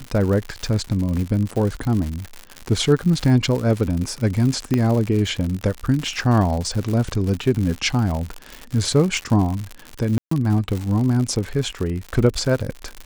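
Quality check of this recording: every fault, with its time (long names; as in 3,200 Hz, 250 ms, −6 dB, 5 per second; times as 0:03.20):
surface crackle 120 per second −24 dBFS
0:04.74: click −8 dBFS
0:10.18–0:10.31: drop-out 134 ms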